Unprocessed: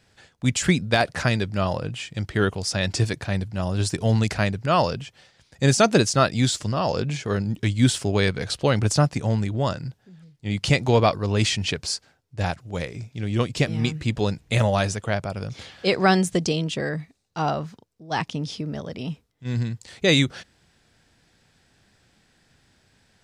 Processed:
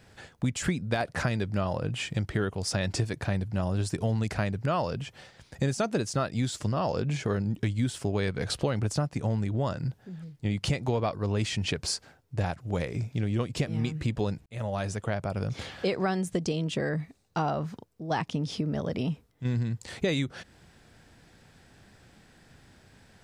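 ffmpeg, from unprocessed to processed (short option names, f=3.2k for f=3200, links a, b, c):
-filter_complex "[0:a]asplit=2[a][b];[a]atrim=end=14.46,asetpts=PTS-STARTPTS,afade=t=out:st=14.456:d=0.004:c=hsin[c];[b]atrim=start=14.46,asetpts=PTS-STARTPTS,afade=t=in:d=1.43[d];[c][d]concat=n=2:v=0:a=1,equalizer=f=4.9k:t=o:w=2.5:g=-6,acompressor=threshold=-33dB:ratio=5,volume=6.5dB"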